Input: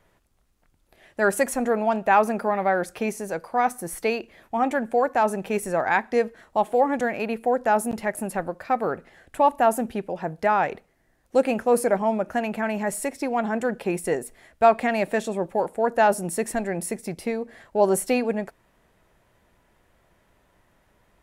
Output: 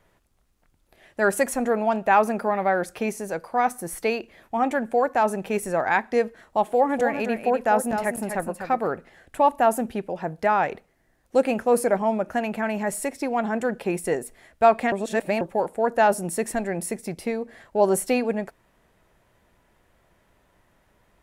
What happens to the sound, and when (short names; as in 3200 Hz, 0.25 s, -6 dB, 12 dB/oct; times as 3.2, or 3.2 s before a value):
6.64–8.88 echo 0.248 s -7.5 dB
14.92–15.41 reverse